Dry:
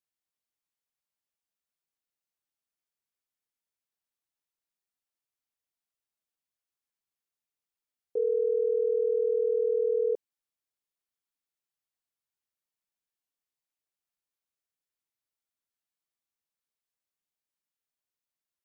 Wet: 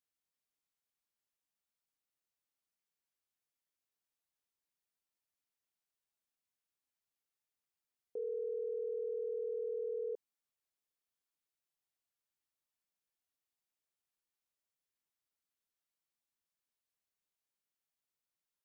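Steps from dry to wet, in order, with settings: peak limiter -31.5 dBFS, peak gain reduction 11.5 dB; trim -2 dB

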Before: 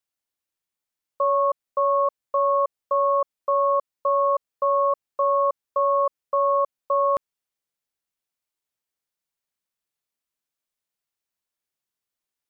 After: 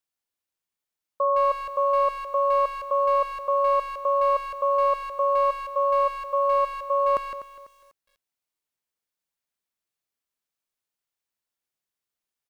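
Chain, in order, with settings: 5.35–7.10 s: spectral contrast enhancement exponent 1.7; speakerphone echo 160 ms, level -7 dB; bit-crushed delay 248 ms, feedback 35%, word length 8-bit, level -14 dB; trim -1.5 dB

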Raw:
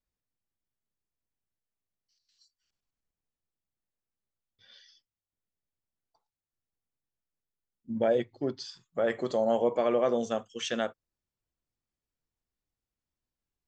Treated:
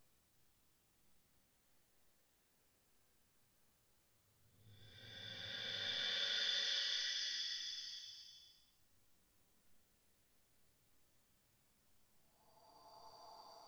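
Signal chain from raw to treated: phase dispersion highs, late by 95 ms, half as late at 480 Hz; Paulstretch 5×, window 0.50 s, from 3.55 s; trim +17.5 dB

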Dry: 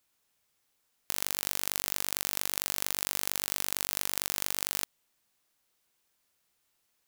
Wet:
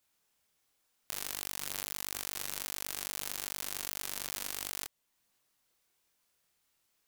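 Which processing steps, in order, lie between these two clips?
chorus voices 2, 1.4 Hz, delay 26 ms, depth 3 ms; in parallel at -0.5 dB: compression, threshold -49 dBFS, peak gain reduction 20.5 dB; on the sum: trim -3.5 dB

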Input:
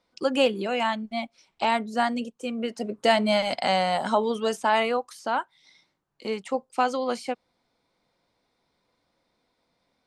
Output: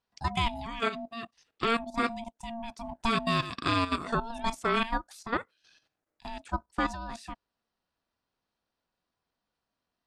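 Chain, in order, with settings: dynamic bell 2.8 kHz, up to +3 dB, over -40 dBFS, Q 3; level held to a coarse grid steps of 12 dB; ring modulator 460 Hz; trim +1 dB

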